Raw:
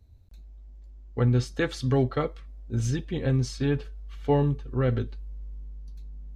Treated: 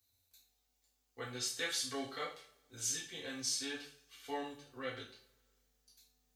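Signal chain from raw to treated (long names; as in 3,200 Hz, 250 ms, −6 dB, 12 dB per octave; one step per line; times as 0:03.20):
first difference
coupled-rooms reverb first 0.41 s, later 1.8 s, from −27 dB, DRR −4.5 dB
level +1 dB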